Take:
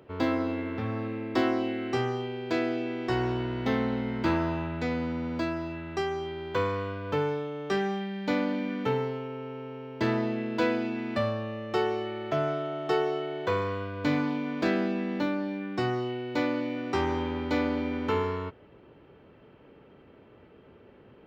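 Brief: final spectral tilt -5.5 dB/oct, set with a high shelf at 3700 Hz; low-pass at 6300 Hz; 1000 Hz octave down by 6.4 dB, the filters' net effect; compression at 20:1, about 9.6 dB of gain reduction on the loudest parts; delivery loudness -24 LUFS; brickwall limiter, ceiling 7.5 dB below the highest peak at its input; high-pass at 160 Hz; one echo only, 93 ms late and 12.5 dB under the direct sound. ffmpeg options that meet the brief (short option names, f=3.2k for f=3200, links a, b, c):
-af "highpass=160,lowpass=6.3k,equalizer=f=1k:t=o:g=-8,highshelf=f=3.7k:g=-7,acompressor=threshold=-32dB:ratio=20,alimiter=level_in=5.5dB:limit=-24dB:level=0:latency=1,volume=-5.5dB,aecho=1:1:93:0.237,volume=14dB"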